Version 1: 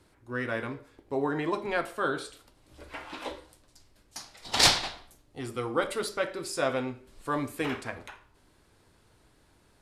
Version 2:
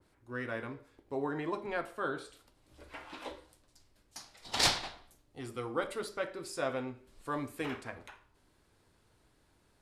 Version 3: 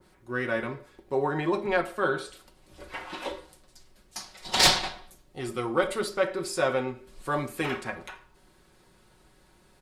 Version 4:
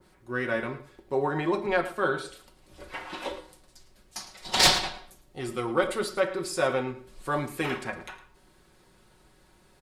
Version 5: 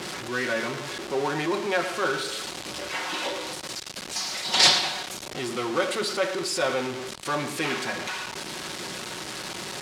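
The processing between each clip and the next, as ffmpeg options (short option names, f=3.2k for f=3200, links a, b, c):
-af "adynamicequalizer=threshold=0.00708:dfrequency=2300:dqfactor=0.7:tfrequency=2300:tqfactor=0.7:attack=5:release=100:ratio=0.375:range=3:mode=cutabove:tftype=highshelf,volume=-6dB"
-af "aecho=1:1:5.4:0.57,asoftclip=type=tanh:threshold=-17dB,volume=8dB"
-af "aecho=1:1:109:0.168"
-af "aeval=exprs='val(0)+0.5*0.0473*sgn(val(0))':c=same,highpass=150,lowpass=4.8k,crystalizer=i=3:c=0,volume=-3dB"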